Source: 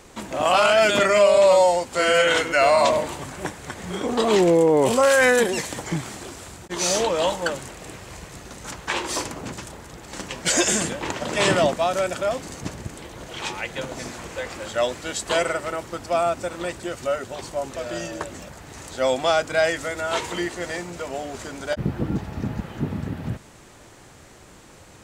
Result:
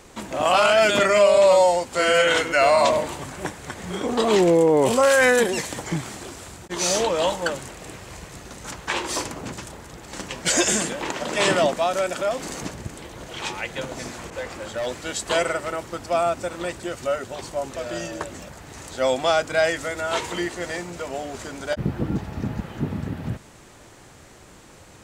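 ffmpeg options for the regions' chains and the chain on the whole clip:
ffmpeg -i in.wav -filter_complex "[0:a]asettb=1/sr,asplit=3[link_01][link_02][link_03];[link_01]atrim=end=10.804[link_04];[link_02]atrim=start=10.8:end=12.71,asetpts=PTS-STARTPTS,afade=type=in:duration=0.004:curve=qsin,afade=type=out:start_time=1.906:duration=0.004:curve=qsin,equalizer=frequency=89:width_type=o:width=1.2:gain=-11,acompressor=mode=upward:threshold=-24dB:ratio=2.5:attack=3.2:release=140:knee=2.83:detection=peak[link_05];[link_03]atrim=start=12.706[link_06];[link_04][link_05]acrossfade=duration=0.004:curve1=hsin:curve2=qsin[link_07];[link_07][link_06]acrossfade=duration=0.004:curve1=qsin:curve2=hsin,asettb=1/sr,asplit=3[link_08][link_09][link_10];[link_08]atrim=end=14.304[link_11];[link_09]atrim=start=14.3:end=14.87,asetpts=PTS-STARTPTS,afade=type=in:duration=0.004:curve=qsin,afade=type=out:start_time=0.566:duration=0.004:curve=qsin,asoftclip=type=hard:threshold=-24dB,adynamicequalizer=threshold=0.00891:dfrequency=1700:dqfactor=0.7:tfrequency=1700:tqfactor=0.7:attack=5:release=100:ratio=0.375:range=2:mode=cutabove:tftype=highshelf[link_12];[link_10]atrim=start=14.866[link_13];[link_11][link_12]acrossfade=duration=0.004:curve1=hsin:curve2=qsin[link_14];[link_14][link_13]acrossfade=duration=0.004:curve1=qsin:curve2=hsin" out.wav

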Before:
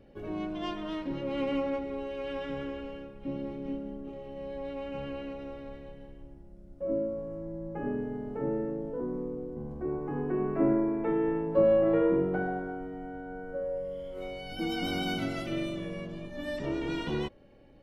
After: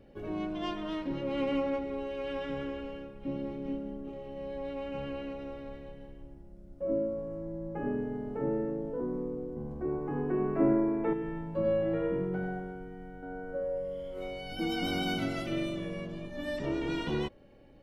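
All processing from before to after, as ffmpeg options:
ffmpeg -i in.wav -filter_complex "[0:a]asettb=1/sr,asplit=3[link_01][link_02][link_03];[link_01]atrim=end=11.134[link_04];[link_02]atrim=start=11.13:end=13.23,asetpts=PTS-STARTPTS,afade=type=in:duration=0.004:curve=qsin,afade=type=out:start_time=2.096:duration=0.004:curve=qsin,equalizer=frequency=720:width=0.38:gain=-9.5,aecho=1:1:92|239:0.531|0.15,atrim=end_sample=92610[link_05];[link_03]atrim=start=13.226[link_06];[link_04][link_05]acrossfade=duration=0.004:curve1=hsin:curve2=qsin[link_07];[link_07][link_06]acrossfade=duration=0.004:curve1=qsin:curve2=hsin" out.wav

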